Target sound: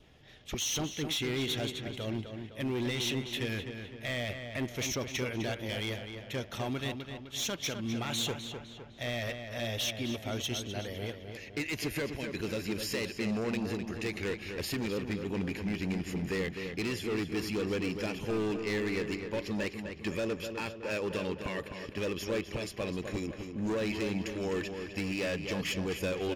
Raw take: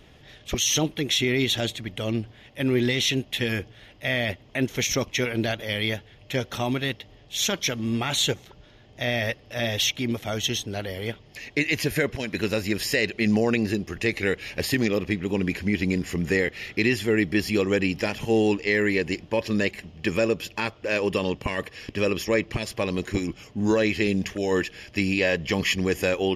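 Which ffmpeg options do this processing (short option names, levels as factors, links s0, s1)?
-filter_complex "[0:a]asoftclip=type=hard:threshold=0.0891,adynamicequalizer=threshold=0.00355:dfrequency=1900:dqfactor=7.1:tfrequency=1900:tqfactor=7.1:attack=5:release=100:ratio=0.375:range=3:mode=cutabove:tftype=bell,asplit=2[s0][s1];[s1]adelay=255,lowpass=f=3600:p=1,volume=0.447,asplit=2[s2][s3];[s3]adelay=255,lowpass=f=3600:p=1,volume=0.52,asplit=2[s4][s5];[s5]adelay=255,lowpass=f=3600:p=1,volume=0.52,asplit=2[s6][s7];[s7]adelay=255,lowpass=f=3600:p=1,volume=0.52,asplit=2[s8][s9];[s9]adelay=255,lowpass=f=3600:p=1,volume=0.52,asplit=2[s10][s11];[s11]adelay=255,lowpass=f=3600:p=1,volume=0.52[s12];[s0][s2][s4][s6][s8][s10][s12]amix=inputs=7:normalize=0,volume=0.398"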